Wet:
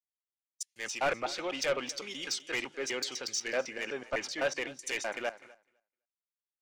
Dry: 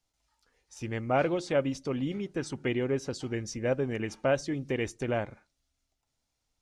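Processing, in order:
slices reordered back to front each 126 ms, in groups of 2
noise gate −52 dBFS, range −22 dB
in parallel at 0 dB: brickwall limiter −24.5 dBFS, peak gain reduction 10.5 dB
on the sum: high-pass filter 510 Hz 6 dB per octave
spectral tilt +4.5 dB per octave
treble cut that deepens with the level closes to 2,900 Hz, closed at −25 dBFS
soft clipping −26 dBFS, distortion −10 dB
on a send: repeating echo 254 ms, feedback 36%, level −15 dB
on the sum: multiband upward and downward expander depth 100%

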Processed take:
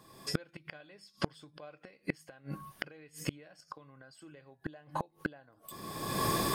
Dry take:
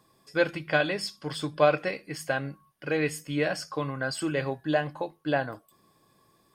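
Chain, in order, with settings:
camcorder AGC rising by 35 dB per second
gate with flip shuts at −21 dBFS, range −33 dB
level +4 dB

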